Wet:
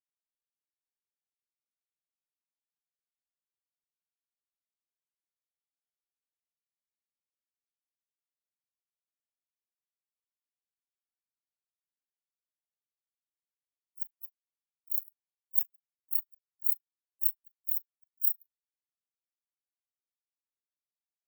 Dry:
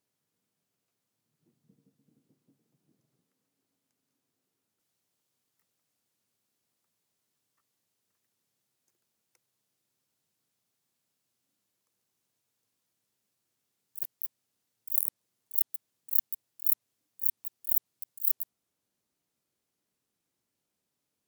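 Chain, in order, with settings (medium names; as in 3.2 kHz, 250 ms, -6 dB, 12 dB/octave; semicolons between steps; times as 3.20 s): gate with hold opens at -55 dBFS; harmony voices +4 st -15 dB, +5 st -17 dB; compression 5:1, threshold -33 dBFS, peak gain reduction 14 dB; flutter echo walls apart 6.8 m, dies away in 0.29 s; companded quantiser 4-bit; spectral contrast expander 4:1; trim +4.5 dB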